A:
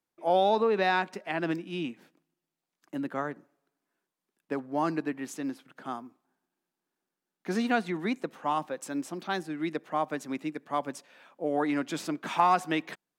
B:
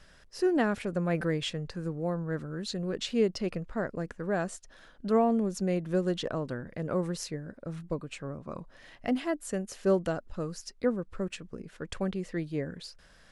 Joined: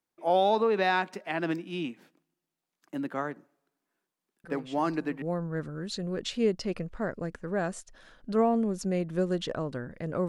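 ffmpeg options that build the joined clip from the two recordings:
ffmpeg -i cue0.wav -i cue1.wav -filter_complex "[1:a]asplit=2[link_01][link_02];[0:a]apad=whole_dur=10.28,atrim=end=10.28,atrim=end=5.222[link_03];[link_02]atrim=start=1.978:end=7.04[link_04];[link_01]atrim=start=1.2:end=1.98,asetpts=PTS-STARTPTS,volume=-14dB,afade=type=in:duration=0.004:curve=hsin,afade=type=out:start_time=0.776:duration=0.004:curve=hsin,adelay=4440[link_05];[link_03][link_04]acrossfade=duration=0.004:curve1=hsin:curve2=hsin[link_06];[link_06][link_05]amix=inputs=2:normalize=0" out.wav

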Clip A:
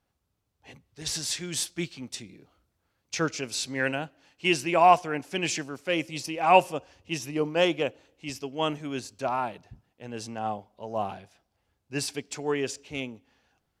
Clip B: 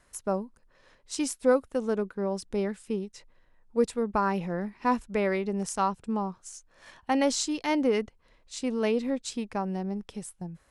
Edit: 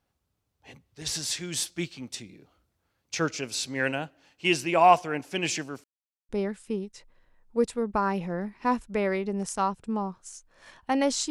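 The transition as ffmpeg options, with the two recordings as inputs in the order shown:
ffmpeg -i cue0.wav -i cue1.wav -filter_complex "[0:a]apad=whole_dur=11.3,atrim=end=11.3,asplit=2[link_01][link_02];[link_01]atrim=end=5.84,asetpts=PTS-STARTPTS,afade=type=out:start_time=5.836:duration=0.004:curve=hsin[link_03];[link_02]atrim=start=5.84:end=6.29,asetpts=PTS-STARTPTS,volume=0[link_04];[1:a]atrim=start=2.49:end=7.5,asetpts=PTS-STARTPTS,afade=type=in:duration=0.004:curve=hsin[link_05];[link_03][link_04][link_05]concat=n=3:v=0:a=1" out.wav

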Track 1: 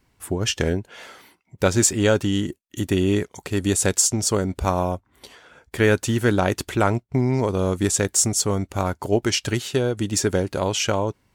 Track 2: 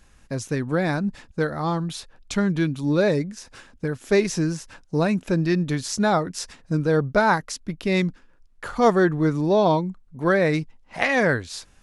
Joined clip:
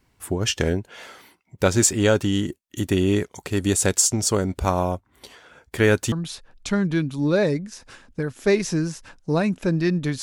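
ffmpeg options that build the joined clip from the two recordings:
ffmpeg -i cue0.wav -i cue1.wav -filter_complex "[0:a]apad=whole_dur=10.22,atrim=end=10.22,atrim=end=6.122[link_01];[1:a]atrim=start=1.768:end=5.87[link_02];[link_01][link_02]acrossfade=duration=0.004:curve1=hsin:curve2=hsin" out.wav

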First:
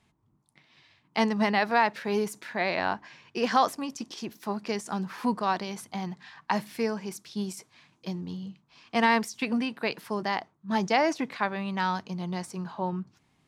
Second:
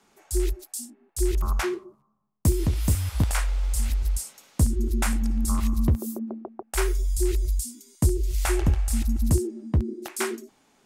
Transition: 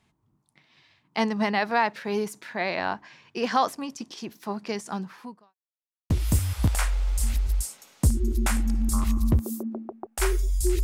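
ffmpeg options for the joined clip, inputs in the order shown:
ffmpeg -i cue0.wav -i cue1.wav -filter_complex "[0:a]apad=whole_dur=10.83,atrim=end=10.83,asplit=2[link_01][link_02];[link_01]atrim=end=5.55,asetpts=PTS-STARTPTS,afade=type=out:start_time=4.96:duration=0.59:curve=qua[link_03];[link_02]atrim=start=5.55:end=6.1,asetpts=PTS-STARTPTS,volume=0[link_04];[1:a]atrim=start=2.66:end=7.39,asetpts=PTS-STARTPTS,afade=type=in:duration=0.004:curve=hsin[link_05];[link_03][link_04][link_05]concat=n=3:v=0:a=1" out.wav

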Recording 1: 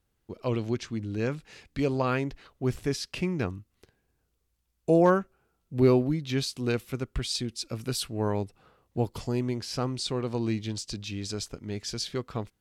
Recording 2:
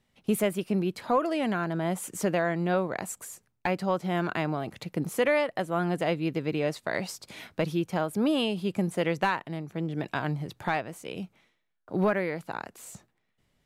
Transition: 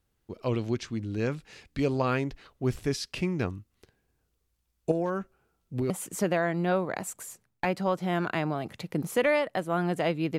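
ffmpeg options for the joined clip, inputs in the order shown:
ffmpeg -i cue0.wav -i cue1.wav -filter_complex "[0:a]asettb=1/sr,asplit=3[link_01][link_02][link_03];[link_01]atrim=end=4.914[link_04];[link_02]atrim=start=4.91:end=5.9,asetpts=PTS-STARTPTS,afade=type=in:duration=0.004:curve=qsin,afade=type=out:start_time=0.986:duration=0.004:curve=qsin,acompressor=threshold=-24dB:ratio=12:attack=3.2:release=140:knee=1:detection=peak[link_05];[link_03]atrim=start=5.896[link_06];[link_04][link_05]acrossfade=duration=0.004:curve1=hsin:curve2=qsin[link_07];[link_07][link_06]acrossfade=duration=0.004:curve1=qsin:curve2=hsin,apad=whole_dur=10.38,atrim=end=10.38,atrim=end=5.902[link_08];[1:a]atrim=start=1.918:end=6.4[link_09];[link_08][link_09]acrossfade=duration=0.004:curve1=hsin:curve2=hsin" out.wav

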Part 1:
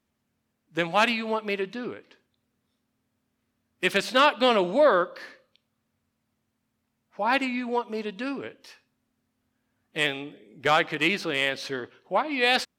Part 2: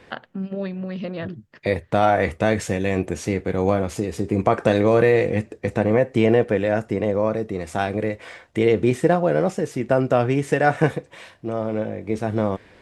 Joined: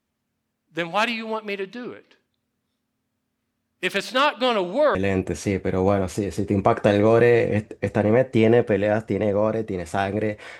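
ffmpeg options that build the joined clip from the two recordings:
ffmpeg -i cue0.wav -i cue1.wav -filter_complex "[0:a]apad=whole_dur=10.59,atrim=end=10.59,atrim=end=4.952[link_01];[1:a]atrim=start=2.758:end=8.4[link_02];[link_01][link_02]acrossfade=duration=0.004:curve1=hsin:curve2=hsin" out.wav

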